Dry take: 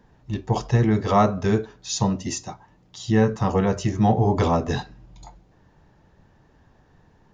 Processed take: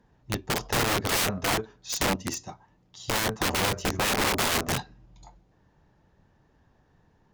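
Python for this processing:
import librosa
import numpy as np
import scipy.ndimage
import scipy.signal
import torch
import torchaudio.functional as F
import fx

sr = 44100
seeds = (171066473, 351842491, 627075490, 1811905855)

y = (np.mod(10.0 ** (18.0 / 20.0) * x + 1.0, 2.0) - 1.0) / 10.0 ** (18.0 / 20.0)
y = fx.cheby_harmonics(y, sr, harmonics=(3,), levels_db=(-16,), full_scale_db=-18.0)
y = F.gain(torch.from_numpy(y), -1.0).numpy()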